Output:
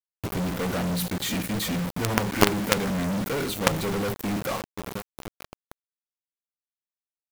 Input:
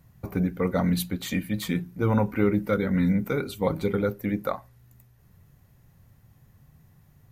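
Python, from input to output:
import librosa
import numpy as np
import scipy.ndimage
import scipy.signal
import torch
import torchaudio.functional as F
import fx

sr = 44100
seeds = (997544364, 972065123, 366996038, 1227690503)

y = fx.echo_filtered(x, sr, ms=930, feedback_pct=51, hz=1000.0, wet_db=-20.0)
y = fx.quant_companded(y, sr, bits=2)
y = y * 10.0 ** (-1.0 / 20.0)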